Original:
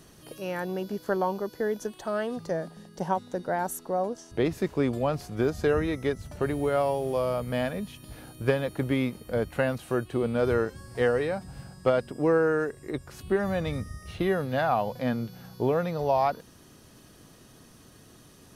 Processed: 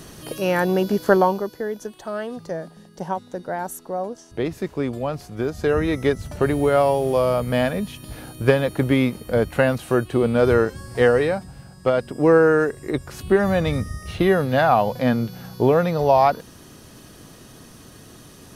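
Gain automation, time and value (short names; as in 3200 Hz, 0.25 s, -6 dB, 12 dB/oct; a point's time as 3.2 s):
1.14 s +12 dB
1.64 s +1 dB
5.49 s +1 dB
5.97 s +8 dB
11.29 s +8 dB
11.59 s +0.5 dB
12.34 s +8.5 dB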